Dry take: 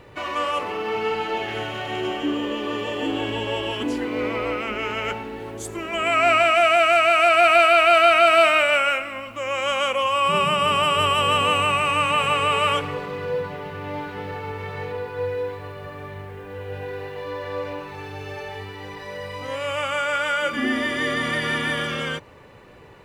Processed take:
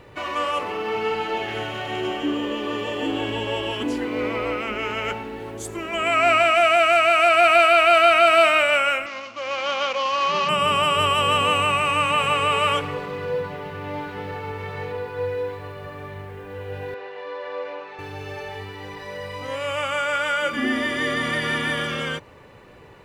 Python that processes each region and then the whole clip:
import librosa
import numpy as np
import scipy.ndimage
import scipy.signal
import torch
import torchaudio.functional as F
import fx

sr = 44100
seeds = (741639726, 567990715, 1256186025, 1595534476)

y = fx.chain(x, sr, fx.cvsd(bps=32000),
    fx.highpass(hz=400.0, slope=6), at=(9.06, 10.49))
y = fx.chain(y, sr, fx.highpass(hz=450.0, slope=12),
    fx.air_absorb(metres=130.0),
    fx.doubler(ms=46.0, db=-12.0), at=(16.94, 17.99))